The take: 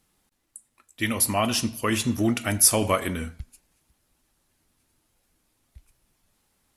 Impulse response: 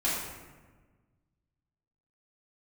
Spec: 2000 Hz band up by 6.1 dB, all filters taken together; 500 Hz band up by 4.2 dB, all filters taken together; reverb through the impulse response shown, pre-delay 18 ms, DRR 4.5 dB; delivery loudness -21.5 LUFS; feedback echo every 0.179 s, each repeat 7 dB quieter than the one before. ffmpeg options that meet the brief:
-filter_complex "[0:a]equalizer=f=500:t=o:g=5,equalizer=f=2k:t=o:g=7,aecho=1:1:179|358|537|716|895:0.447|0.201|0.0905|0.0407|0.0183,asplit=2[a][b];[1:a]atrim=start_sample=2205,adelay=18[c];[b][c]afir=irnorm=-1:irlink=0,volume=-14dB[d];[a][d]amix=inputs=2:normalize=0,volume=-2.5dB"

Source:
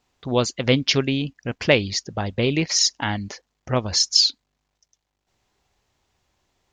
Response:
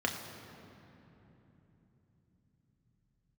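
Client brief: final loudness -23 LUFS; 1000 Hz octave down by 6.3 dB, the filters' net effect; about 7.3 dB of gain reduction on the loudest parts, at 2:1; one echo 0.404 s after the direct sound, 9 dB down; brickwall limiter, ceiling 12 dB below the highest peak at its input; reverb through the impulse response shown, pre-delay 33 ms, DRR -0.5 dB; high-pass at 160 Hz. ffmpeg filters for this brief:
-filter_complex "[0:a]highpass=160,equalizer=f=1k:t=o:g=-8.5,acompressor=threshold=-26dB:ratio=2,alimiter=limit=-21dB:level=0:latency=1,aecho=1:1:404:0.355,asplit=2[a][b];[1:a]atrim=start_sample=2205,adelay=33[c];[b][c]afir=irnorm=-1:irlink=0,volume=-7dB[d];[a][d]amix=inputs=2:normalize=0,volume=6dB"

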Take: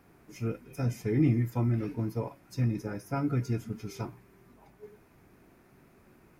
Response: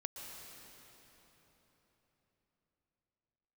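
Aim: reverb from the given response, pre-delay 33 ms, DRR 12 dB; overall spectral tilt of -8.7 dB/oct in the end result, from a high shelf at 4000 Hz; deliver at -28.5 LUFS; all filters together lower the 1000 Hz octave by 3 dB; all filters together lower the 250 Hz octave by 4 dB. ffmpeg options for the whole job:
-filter_complex "[0:a]equalizer=f=250:t=o:g=-5,equalizer=f=1k:t=o:g=-3.5,highshelf=f=4k:g=-4.5,asplit=2[a][b];[1:a]atrim=start_sample=2205,adelay=33[c];[b][c]afir=irnorm=-1:irlink=0,volume=-10.5dB[d];[a][d]amix=inputs=2:normalize=0,volume=4.5dB"

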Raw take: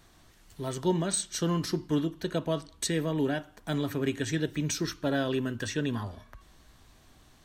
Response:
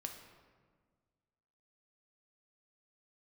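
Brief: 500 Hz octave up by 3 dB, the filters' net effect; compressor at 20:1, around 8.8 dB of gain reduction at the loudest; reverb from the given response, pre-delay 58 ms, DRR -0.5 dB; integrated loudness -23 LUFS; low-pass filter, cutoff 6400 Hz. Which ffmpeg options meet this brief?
-filter_complex "[0:a]lowpass=6.4k,equalizer=f=500:t=o:g=4,acompressor=threshold=-29dB:ratio=20,asplit=2[a][b];[1:a]atrim=start_sample=2205,adelay=58[c];[b][c]afir=irnorm=-1:irlink=0,volume=3dB[d];[a][d]amix=inputs=2:normalize=0,volume=8.5dB"

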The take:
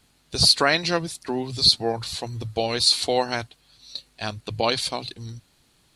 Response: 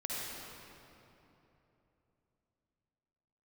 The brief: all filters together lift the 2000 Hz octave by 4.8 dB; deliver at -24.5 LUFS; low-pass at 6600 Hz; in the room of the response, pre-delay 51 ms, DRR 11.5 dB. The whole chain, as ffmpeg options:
-filter_complex "[0:a]lowpass=6.6k,equalizer=f=2k:t=o:g=6,asplit=2[a][b];[1:a]atrim=start_sample=2205,adelay=51[c];[b][c]afir=irnorm=-1:irlink=0,volume=-15dB[d];[a][d]amix=inputs=2:normalize=0,volume=-3.5dB"

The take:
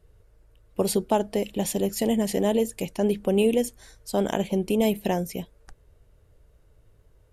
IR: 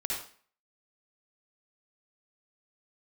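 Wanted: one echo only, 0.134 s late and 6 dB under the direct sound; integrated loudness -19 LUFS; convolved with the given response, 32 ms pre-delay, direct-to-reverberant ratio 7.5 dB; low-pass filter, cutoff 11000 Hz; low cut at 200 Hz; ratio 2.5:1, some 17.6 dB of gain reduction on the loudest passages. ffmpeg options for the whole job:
-filter_complex "[0:a]highpass=200,lowpass=11k,acompressor=threshold=-46dB:ratio=2.5,aecho=1:1:134:0.501,asplit=2[a][b];[1:a]atrim=start_sample=2205,adelay=32[c];[b][c]afir=irnorm=-1:irlink=0,volume=-12dB[d];[a][d]amix=inputs=2:normalize=0,volume=22dB"

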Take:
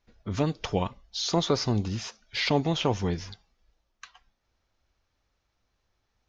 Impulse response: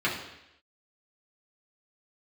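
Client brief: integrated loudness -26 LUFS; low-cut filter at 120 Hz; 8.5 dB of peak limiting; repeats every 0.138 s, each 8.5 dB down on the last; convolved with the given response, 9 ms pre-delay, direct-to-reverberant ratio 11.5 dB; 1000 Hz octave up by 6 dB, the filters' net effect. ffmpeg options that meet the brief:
-filter_complex "[0:a]highpass=120,equalizer=f=1k:t=o:g=7.5,alimiter=limit=-16.5dB:level=0:latency=1,aecho=1:1:138|276|414|552:0.376|0.143|0.0543|0.0206,asplit=2[a][b];[1:a]atrim=start_sample=2205,adelay=9[c];[b][c]afir=irnorm=-1:irlink=0,volume=-23.5dB[d];[a][d]amix=inputs=2:normalize=0,volume=3.5dB"

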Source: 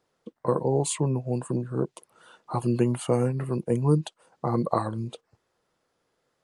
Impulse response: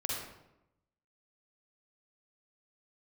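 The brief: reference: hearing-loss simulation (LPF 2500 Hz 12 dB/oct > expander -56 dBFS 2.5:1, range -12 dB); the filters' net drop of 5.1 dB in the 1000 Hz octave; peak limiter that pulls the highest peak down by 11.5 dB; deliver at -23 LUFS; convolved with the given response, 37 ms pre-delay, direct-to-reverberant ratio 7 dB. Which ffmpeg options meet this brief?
-filter_complex "[0:a]equalizer=f=1k:t=o:g=-6.5,alimiter=limit=-21.5dB:level=0:latency=1,asplit=2[a][b];[1:a]atrim=start_sample=2205,adelay=37[c];[b][c]afir=irnorm=-1:irlink=0,volume=-11dB[d];[a][d]amix=inputs=2:normalize=0,lowpass=2.5k,agate=range=-12dB:threshold=-56dB:ratio=2.5,volume=8.5dB"

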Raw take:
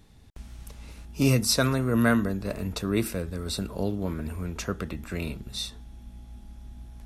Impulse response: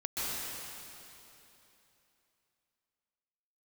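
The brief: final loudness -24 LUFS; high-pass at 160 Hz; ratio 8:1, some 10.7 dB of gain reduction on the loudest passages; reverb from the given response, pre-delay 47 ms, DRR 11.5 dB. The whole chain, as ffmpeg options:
-filter_complex "[0:a]highpass=160,acompressor=threshold=-30dB:ratio=8,asplit=2[a][b];[1:a]atrim=start_sample=2205,adelay=47[c];[b][c]afir=irnorm=-1:irlink=0,volume=-18dB[d];[a][d]amix=inputs=2:normalize=0,volume=11.5dB"

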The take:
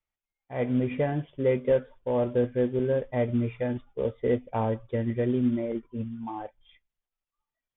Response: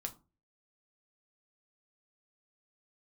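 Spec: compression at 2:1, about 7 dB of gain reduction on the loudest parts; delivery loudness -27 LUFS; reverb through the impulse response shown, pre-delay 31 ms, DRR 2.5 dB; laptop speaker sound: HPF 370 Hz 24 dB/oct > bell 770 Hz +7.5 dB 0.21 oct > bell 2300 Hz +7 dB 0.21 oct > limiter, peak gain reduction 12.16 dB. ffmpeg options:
-filter_complex "[0:a]acompressor=threshold=-32dB:ratio=2,asplit=2[a][b];[1:a]atrim=start_sample=2205,adelay=31[c];[b][c]afir=irnorm=-1:irlink=0,volume=-0.5dB[d];[a][d]amix=inputs=2:normalize=0,highpass=f=370:w=0.5412,highpass=f=370:w=1.3066,equalizer=f=770:t=o:w=0.21:g=7.5,equalizer=f=2.3k:t=o:w=0.21:g=7,volume=12.5dB,alimiter=limit=-17.5dB:level=0:latency=1"

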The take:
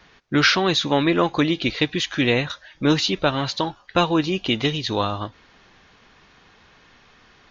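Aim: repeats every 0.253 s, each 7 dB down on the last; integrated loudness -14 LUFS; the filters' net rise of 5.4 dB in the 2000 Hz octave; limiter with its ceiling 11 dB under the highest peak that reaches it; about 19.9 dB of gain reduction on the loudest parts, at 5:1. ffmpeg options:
-af "equalizer=f=2k:t=o:g=7,acompressor=threshold=-32dB:ratio=5,alimiter=level_in=3dB:limit=-24dB:level=0:latency=1,volume=-3dB,aecho=1:1:253|506|759|1012|1265:0.447|0.201|0.0905|0.0407|0.0183,volume=23.5dB"

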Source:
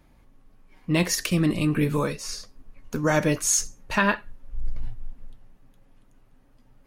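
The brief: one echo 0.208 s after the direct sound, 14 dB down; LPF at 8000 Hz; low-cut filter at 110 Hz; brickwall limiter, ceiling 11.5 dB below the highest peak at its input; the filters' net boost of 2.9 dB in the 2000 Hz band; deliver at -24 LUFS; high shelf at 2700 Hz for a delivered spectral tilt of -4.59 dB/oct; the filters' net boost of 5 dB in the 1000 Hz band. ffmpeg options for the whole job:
-af "highpass=110,lowpass=8k,equalizer=f=1k:t=o:g=5.5,equalizer=f=2k:t=o:g=4,highshelf=f=2.7k:g=-5.5,alimiter=limit=-15.5dB:level=0:latency=1,aecho=1:1:208:0.2,volume=3.5dB"

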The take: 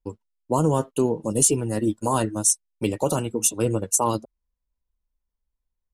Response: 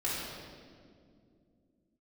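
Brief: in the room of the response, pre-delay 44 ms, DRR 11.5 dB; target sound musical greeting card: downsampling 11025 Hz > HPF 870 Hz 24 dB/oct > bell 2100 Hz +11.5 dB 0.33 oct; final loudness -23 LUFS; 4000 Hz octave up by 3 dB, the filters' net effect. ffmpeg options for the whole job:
-filter_complex "[0:a]equalizer=f=4k:t=o:g=3.5,asplit=2[a][b];[1:a]atrim=start_sample=2205,adelay=44[c];[b][c]afir=irnorm=-1:irlink=0,volume=-18.5dB[d];[a][d]amix=inputs=2:normalize=0,aresample=11025,aresample=44100,highpass=f=870:w=0.5412,highpass=f=870:w=1.3066,equalizer=f=2.1k:t=o:w=0.33:g=11.5,volume=10.5dB"

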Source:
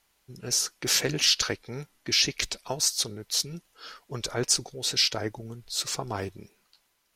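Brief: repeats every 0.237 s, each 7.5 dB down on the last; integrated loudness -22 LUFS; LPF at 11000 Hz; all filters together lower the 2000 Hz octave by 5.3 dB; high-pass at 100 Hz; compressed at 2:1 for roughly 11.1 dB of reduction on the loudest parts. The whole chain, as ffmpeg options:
-af "highpass=100,lowpass=11k,equalizer=f=2k:t=o:g=-7,acompressor=threshold=-41dB:ratio=2,aecho=1:1:237|474|711|948|1185:0.422|0.177|0.0744|0.0312|0.0131,volume=14.5dB"

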